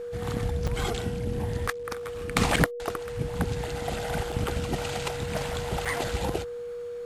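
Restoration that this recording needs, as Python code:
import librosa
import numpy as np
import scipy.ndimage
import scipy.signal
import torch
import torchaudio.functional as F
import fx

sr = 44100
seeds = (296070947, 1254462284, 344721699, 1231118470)

y = fx.fix_declip(x, sr, threshold_db=-7.5)
y = fx.notch(y, sr, hz=480.0, q=30.0)
y = fx.fix_interpolate(y, sr, at_s=(0.67, 1.67, 2.56, 4.32, 5.85), length_ms=5.5)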